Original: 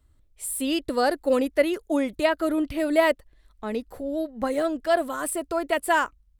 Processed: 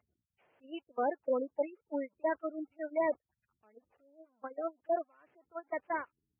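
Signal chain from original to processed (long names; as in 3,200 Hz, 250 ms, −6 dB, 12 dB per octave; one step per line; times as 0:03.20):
linear delta modulator 16 kbit/s, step −30 dBFS
noise gate −22 dBFS, range −30 dB
gate on every frequency bin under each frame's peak −20 dB strong
high-pass filter 91 Hz 24 dB per octave
parametric band 160 Hz −12 dB 2.2 octaves
in parallel at −1 dB: downward compressor, threshold −38 dBFS, peak gain reduction 15.5 dB
on the sum: level −6.5 dB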